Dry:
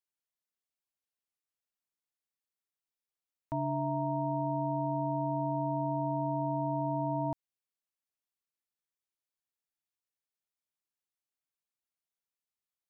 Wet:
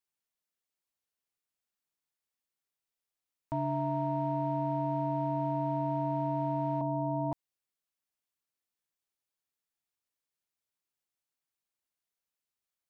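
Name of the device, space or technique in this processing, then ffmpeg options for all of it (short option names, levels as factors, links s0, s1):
parallel distortion: -filter_complex "[0:a]asplit=2[s0][s1];[s1]asoftclip=type=hard:threshold=0.0112,volume=0.224[s2];[s0][s2]amix=inputs=2:normalize=0,asettb=1/sr,asplit=3[s3][s4][s5];[s3]atrim=end=6.814[s6];[s4]atrim=start=6.81:end=7.32,asetpts=PTS-STARTPTS,afade=t=in:d=0.004:c=qsin,afade=t=out:st=0.506:d=0.004:c=qsin,lowpass=f=1000:w=0.5412,lowpass=f=1000:w=1.3066[s7];[s5]atrim=start=7.316[s8];[s6][s7]acrossfade=d=0.004:c1=hsin:c2=qsin[s9];[s9][s8]acrossfade=d=0.004:c1=qsin:c2=hsin"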